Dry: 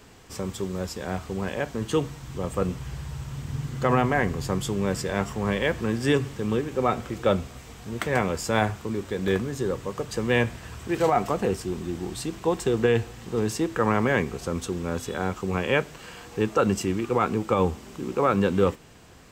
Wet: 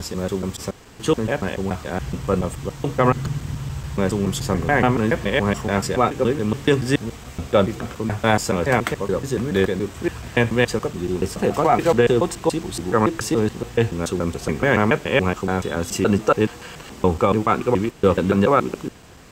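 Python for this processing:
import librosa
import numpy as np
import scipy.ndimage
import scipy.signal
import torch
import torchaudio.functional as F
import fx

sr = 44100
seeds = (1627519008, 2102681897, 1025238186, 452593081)

y = fx.block_reorder(x, sr, ms=142.0, group=7)
y = y * 10.0 ** (5.5 / 20.0)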